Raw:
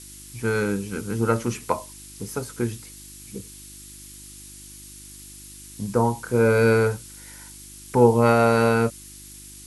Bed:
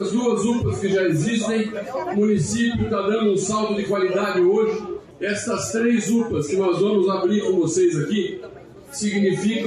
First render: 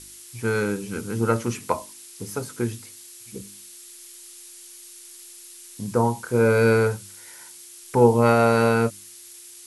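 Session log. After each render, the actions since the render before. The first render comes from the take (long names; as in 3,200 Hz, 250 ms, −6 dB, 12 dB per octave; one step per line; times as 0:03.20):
hum removal 50 Hz, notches 6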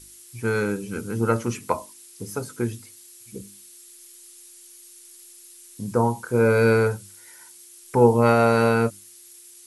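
broadband denoise 6 dB, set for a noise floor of −45 dBFS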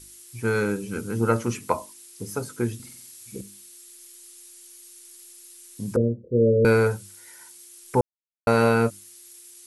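0:02.75–0:03.41: flutter between parallel walls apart 8.1 metres, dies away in 0.7 s
0:05.96–0:06.65: Butterworth low-pass 580 Hz 96 dB per octave
0:08.01–0:08.47: silence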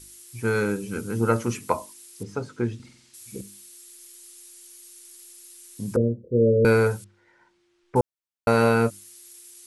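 0:02.23–0:03.14: high-frequency loss of the air 130 metres
0:07.04–0:07.96: head-to-tape spacing loss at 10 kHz 45 dB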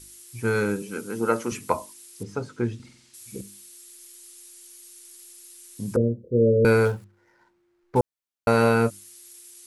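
0:00.82–0:01.52: high-pass filter 240 Hz
0:06.85–0:07.99: running median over 15 samples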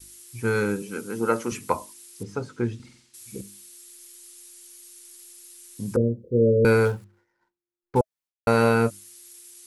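notch filter 640 Hz, Q 12
downward expander −52 dBFS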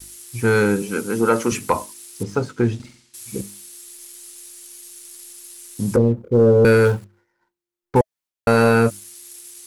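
in parallel at −2 dB: brickwall limiter −17.5 dBFS, peak gain reduction 11 dB
on the sum: leveller curve on the samples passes 1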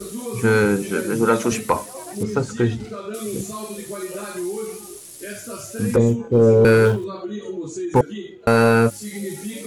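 mix in bed −10.5 dB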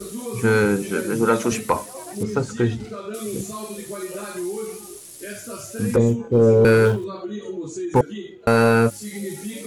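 level −1 dB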